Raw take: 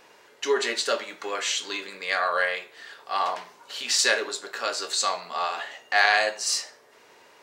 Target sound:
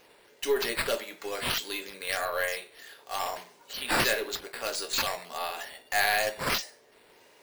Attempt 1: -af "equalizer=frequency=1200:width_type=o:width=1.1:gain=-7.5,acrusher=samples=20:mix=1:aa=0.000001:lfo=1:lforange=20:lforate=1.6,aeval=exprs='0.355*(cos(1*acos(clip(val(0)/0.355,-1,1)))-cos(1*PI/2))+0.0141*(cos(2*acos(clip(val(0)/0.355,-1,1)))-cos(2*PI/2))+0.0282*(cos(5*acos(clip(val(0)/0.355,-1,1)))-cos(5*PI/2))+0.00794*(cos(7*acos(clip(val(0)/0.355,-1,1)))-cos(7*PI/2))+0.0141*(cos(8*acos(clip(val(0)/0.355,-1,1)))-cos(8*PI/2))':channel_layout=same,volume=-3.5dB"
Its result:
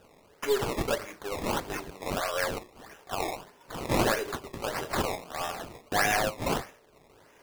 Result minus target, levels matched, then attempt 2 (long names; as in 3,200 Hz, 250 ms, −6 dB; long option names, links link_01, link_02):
sample-and-hold swept by an LFO: distortion +9 dB
-af "equalizer=frequency=1200:width_type=o:width=1.1:gain=-7.5,acrusher=samples=5:mix=1:aa=0.000001:lfo=1:lforange=5:lforate=1.6,aeval=exprs='0.355*(cos(1*acos(clip(val(0)/0.355,-1,1)))-cos(1*PI/2))+0.0141*(cos(2*acos(clip(val(0)/0.355,-1,1)))-cos(2*PI/2))+0.0282*(cos(5*acos(clip(val(0)/0.355,-1,1)))-cos(5*PI/2))+0.00794*(cos(7*acos(clip(val(0)/0.355,-1,1)))-cos(7*PI/2))+0.0141*(cos(8*acos(clip(val(0)/0.355,-1,1)))-cos(8*PI/2))':channel_layout=same,volume=-3.5dB"